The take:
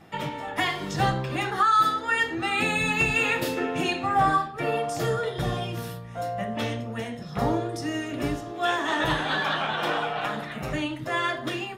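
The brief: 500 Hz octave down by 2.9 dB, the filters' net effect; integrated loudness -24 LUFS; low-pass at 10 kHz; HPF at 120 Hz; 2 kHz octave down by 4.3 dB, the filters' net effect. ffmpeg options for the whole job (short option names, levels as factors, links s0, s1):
-af "highpass=120,lowpass=10000,equalizer=f=500:t=o:g=-3.5,equalizer=f=2000:t=o:g=-5.5,volume=1.68"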